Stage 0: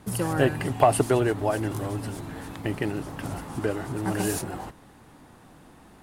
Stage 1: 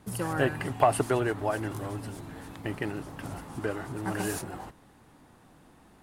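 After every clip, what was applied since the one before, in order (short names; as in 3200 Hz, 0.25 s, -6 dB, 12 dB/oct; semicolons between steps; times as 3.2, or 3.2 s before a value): dynamic EQ 1400 Hz, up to +5 dB, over -39 dBFS, Q 0.86; gain -5.5 dB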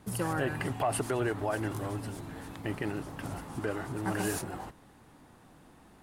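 limiter -20.5 dBFS, peak gain reduction 10.5 dB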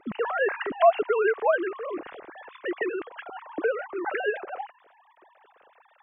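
sine-wave speech; gain +6.5 dB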